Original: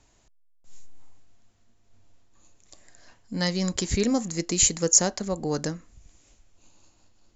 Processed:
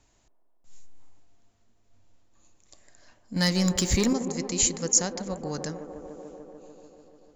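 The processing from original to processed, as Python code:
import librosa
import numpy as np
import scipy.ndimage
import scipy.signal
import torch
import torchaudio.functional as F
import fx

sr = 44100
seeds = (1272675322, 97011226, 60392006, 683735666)

y = fx.leveller(x, sr, passes=2, at=(3.36, 4.13))
y = fx.echo_wet_bandpass(y, sr, ms=147, feedback_pct=78, hz=530.0, wet_db=-7.0)
y = fx.dynamic_eq(y, sr, hz=430.0, q=0.92, threshold_db=-36.0, ratio=4.0, max_db=-5)
y = y * 10.0 ** (-3.0 / 20.0)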